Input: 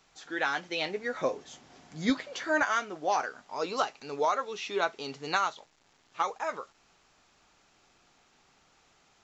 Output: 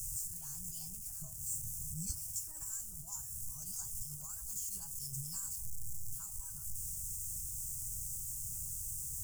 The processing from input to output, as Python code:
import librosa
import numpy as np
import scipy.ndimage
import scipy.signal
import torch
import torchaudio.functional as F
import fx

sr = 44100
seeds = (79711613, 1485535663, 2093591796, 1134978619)

y = x + 0.5 * 10.0 ** (-34.5 / 20.0) * np.sign(x)
y = fx.formant_shift(y, sr, semitones=3)
y = scipy.signal.sosfilt(scipy.signal.cheby2(4, 40, [240.0, 4100.0], 'bandstop', fs=sr, output='sos'), y)
y = F.gain(torch.from_numpy(y), 5.5).numpy()